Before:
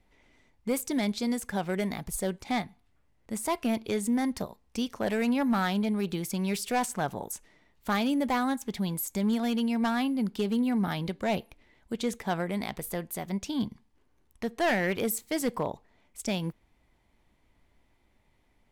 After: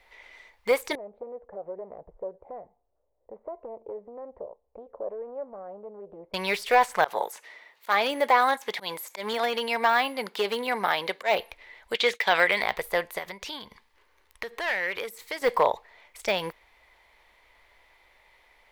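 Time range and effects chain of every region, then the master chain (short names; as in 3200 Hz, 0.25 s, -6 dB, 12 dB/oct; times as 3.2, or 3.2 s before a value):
0.95–6.34 compressor, threshold -32 dBFS + ladder low-pass 650 Hz, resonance 50% + Doppler distortion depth 0.22 ms
7.04–11.39 auto swell 0.117 s + HPF 230 Hz
11.94–12.62 de-esser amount 80% + weighting filter D + expander -36 dBFS
13.18–15.42 compressor, threshold -37 dBFS + bell 710 Hz -5.5 dB 0.34 oct
whole clip: high shelf 4400 Hz +11 dB; de-esser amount 85%; graphic EQ 125/250/500/1000/2000/4000/8000 Hz -10/-11/+10/+9/+12/+7/-4 dB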